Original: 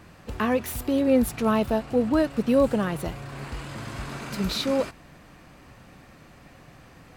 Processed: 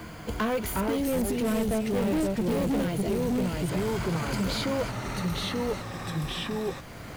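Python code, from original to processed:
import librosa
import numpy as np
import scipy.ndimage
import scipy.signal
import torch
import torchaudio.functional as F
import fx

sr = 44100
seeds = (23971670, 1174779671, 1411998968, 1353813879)

y = fx.quant_companded(x, sr, bits=6)
y = fx.ripple_eq(y, sr, per_octave=1.8, db=9)
y = fx.echo_pitch(y, sr, ms=311, semitones=-2, count=2, db_per_echo=-3.0)
y = 10.0 ** (-22.5 / 20.0) * np.tanh(y / 10.0 ** (-22.5 / 20.0))
y = fx.peak_eq(y, sr, hz=1200.0, db=-7.5, octaves=1.1, at=(0.98, 3.69))
y = fx.band_squash(y, sr, depth_pct=40)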